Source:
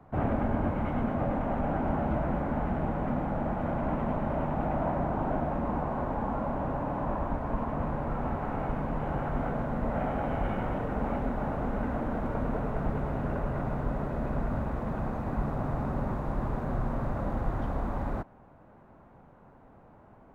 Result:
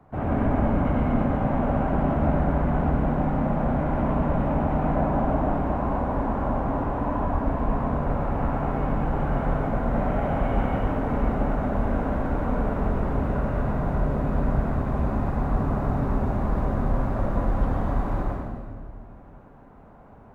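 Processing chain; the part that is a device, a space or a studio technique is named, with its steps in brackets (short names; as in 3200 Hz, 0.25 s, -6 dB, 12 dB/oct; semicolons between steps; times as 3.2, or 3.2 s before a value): stairwell (reverb RT60 1.8 s, pre-delay 87 ms, DRR -3 dB)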